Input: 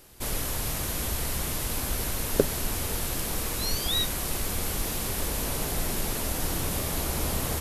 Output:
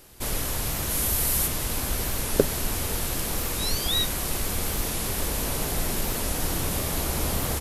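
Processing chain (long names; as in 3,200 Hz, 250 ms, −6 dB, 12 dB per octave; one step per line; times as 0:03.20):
0:00.90–0:01.46: high-shelf EQ 12,000 Hz → 7,100 Hz +11 dB
wow of a warped record 45 rpm, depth 100 cents
level +2 dB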